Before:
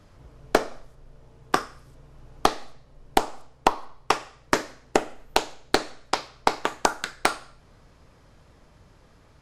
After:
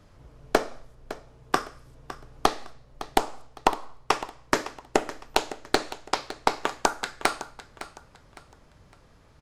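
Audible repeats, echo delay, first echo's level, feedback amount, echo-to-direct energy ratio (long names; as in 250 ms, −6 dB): 2, 559 ms, −15.0 dB, 31%, −14.5 dB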